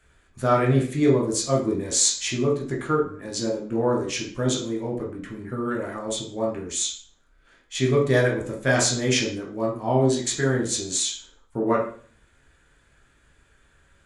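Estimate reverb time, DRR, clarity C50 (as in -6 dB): 0.45 s, -2.5 dB, 7.0 dB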